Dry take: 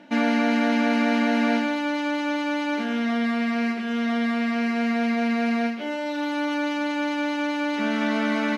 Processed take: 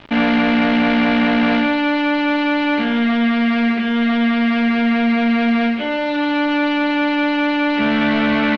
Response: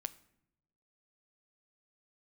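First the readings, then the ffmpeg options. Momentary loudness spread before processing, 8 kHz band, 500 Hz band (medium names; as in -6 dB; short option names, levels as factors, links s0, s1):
5 LU, no reading, +6.0 dB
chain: -af "aresample=16000,asoftclip=type=tanh:threshold=0.0794,aresample=44100,highshelf=f=2600:g=9.5,bandreject=f=60:t=h:w=6,bandreject=f=120:t=h:w=6,bandreject=f=180:t=h:w=6,bandreject=f=240:t=h:w=6,bandreject=f=300:t=h:w=6,bandreject=f=360:t=h:w=6,bandreject=f=420:t=h:w=6,bandreject=f=480:t=h:w=6,bandreject=f=540:t=h:w=6,acrusher=bits=6:mix=0:aa=0.000001,lowpass=f=3500:w=0.5412,lowpass=f=3500:w=1.3066,lowshelf=f=260:g=6,volume=2.51"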